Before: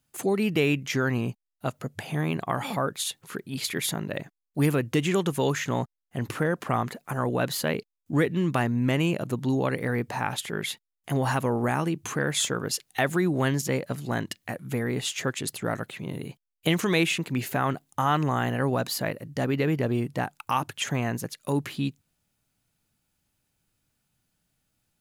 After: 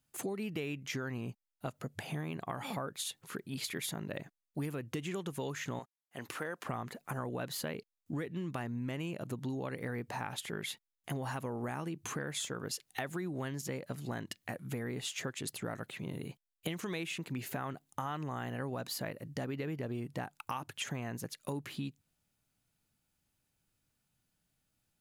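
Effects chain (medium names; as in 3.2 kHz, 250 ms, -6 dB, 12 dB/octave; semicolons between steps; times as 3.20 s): 5.79–6.65 s: high-pass 720 Hz 6 dB/octave; compression, threshold -30 dBFS, peak gain reduction 11.5 dB; trim -5 dB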